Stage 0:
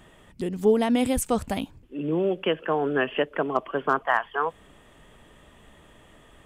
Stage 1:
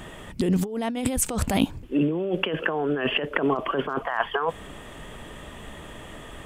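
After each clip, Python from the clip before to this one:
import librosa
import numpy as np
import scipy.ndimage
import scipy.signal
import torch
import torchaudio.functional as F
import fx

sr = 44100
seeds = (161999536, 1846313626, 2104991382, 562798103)

y = fx.over_compress(x, sr, threshold_db=-31.0, ratio=-1.0)
y = y * 10.0 ** (6.0 / 20.0)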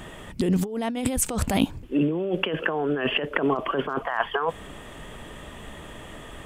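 y = x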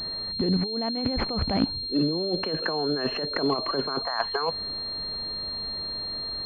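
y = fx.pwm(x, sr, carrier_hz=4200.0)
y = y * 10.0 ** (-2.0 / 20.0)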